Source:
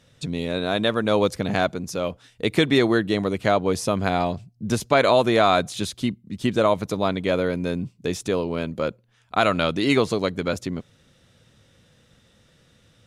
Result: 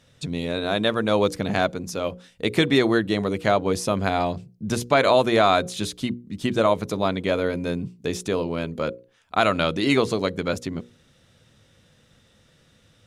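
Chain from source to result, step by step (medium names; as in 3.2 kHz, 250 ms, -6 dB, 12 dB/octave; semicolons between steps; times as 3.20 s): hum notches 60/120/180/240/300/360/420/480/540 Hz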